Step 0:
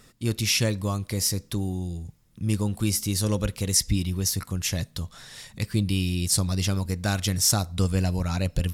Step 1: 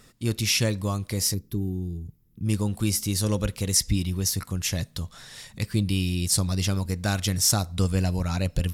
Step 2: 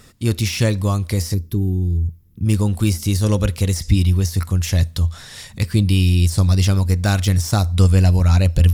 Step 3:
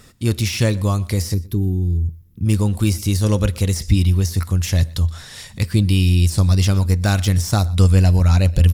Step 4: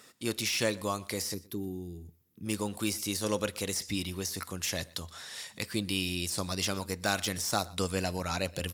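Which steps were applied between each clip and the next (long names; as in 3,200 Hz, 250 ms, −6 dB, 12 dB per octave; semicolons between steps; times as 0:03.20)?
hard clipping −11 dBFS, distortion −40 dB; gain on a spectral selection 0:01.34–0:02.45, 460–11,000 Hz −13 dB
de-essing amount 55%; parametric band 83 Hz +11.5 dB 0.33 octaves; level +6.5 dB
single-tap delay 122 ms −22.5 dB
Bessel high-pass filter 400 Hz, order 2; level −5.5 dB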